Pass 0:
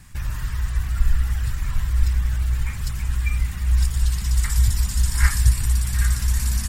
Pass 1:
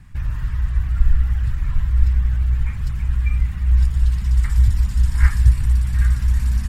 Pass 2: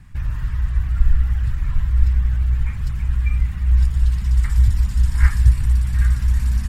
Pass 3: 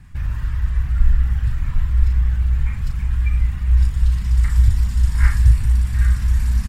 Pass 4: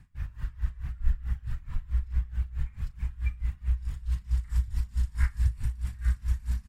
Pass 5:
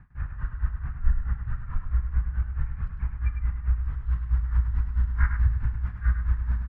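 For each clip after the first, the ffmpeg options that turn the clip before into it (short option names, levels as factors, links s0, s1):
-af "bass=f=250:g=6,treble=f=4000:g=-12,volume=0.75"
-af anull
-filter_complex "[0:a]asplit=2[s0][s1];[s1]adelay=37,volume=0.501[s2];[s0][s2]amix=inputs=2:normalize=0"
-af "aeval=exprs='val(0)*pow(10,-21*(0.5-0.5*cos(2*PI*4.6*n/s))/20)':c=same,volume=0.398"
-af "lowpass=f=1400:t=q:w=2.3,aecho=1:1:103:0.447,volume=1.41"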